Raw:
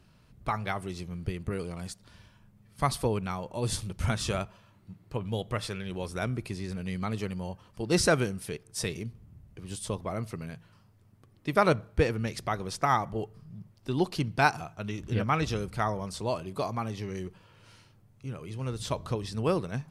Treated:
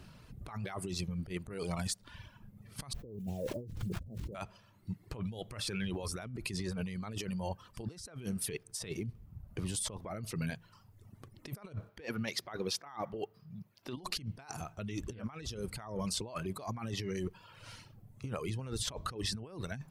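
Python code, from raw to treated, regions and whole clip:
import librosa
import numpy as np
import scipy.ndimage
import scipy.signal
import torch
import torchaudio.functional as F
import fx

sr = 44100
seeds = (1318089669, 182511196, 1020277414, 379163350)

y = fx.chain(x, sr, fx.steep_lowpass(hz=540.0, slope=36),
    fx.quant_dither(seeds[0], bits=10, dither='none'),
    fx.sustainer(db_per_s=37.0), at=(2.93, 4.35))
y = fx.chain(y, sr, fx.highpass(hz=380.0, slope=6),
    fx.peak_eq(hz=8500.0, db=-11.0, octaves=0.78), at=(11.89, 13.97))
y = fx.dereverb_blind(y, sr, rt60_s=0.89)
y = fx.over_compress(y, sr, threshold_db=-41.0, ratio=-1.0)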